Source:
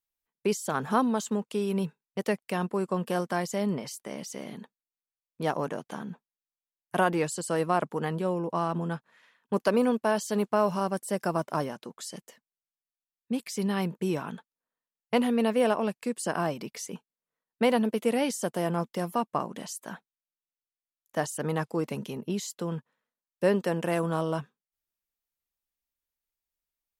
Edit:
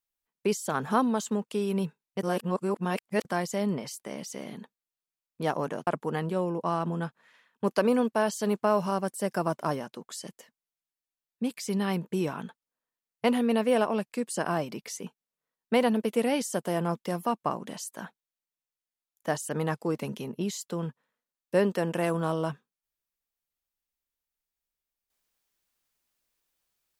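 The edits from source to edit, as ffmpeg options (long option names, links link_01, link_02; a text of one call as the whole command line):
ffmpeg -i in.wav -filter_complex "[0:a]asplit=4[link_01][link_02][link_03][link_04];[link_01]atrim=end=2.232[link_05];[link_02]atrim=start=2.228:end=3.252,asetpts=PTS-STARTPTS,areverse[link_06];[link_03]atrim=start=3.248:end=5.872[link_07];[link_04]atrim=start=7.758[link_08];[link_05][link_06]acrossfade=duration=0.004:curve1=hsin:curve2=hsin[link_09];[link_09][link_07]acrossfade=duration=0.004:curve1=hsin:curve2=hsin[link_10];[link_10][link_08]acrossfade=duration=0.004:curve1=hsin:curve2=hsin" out.wav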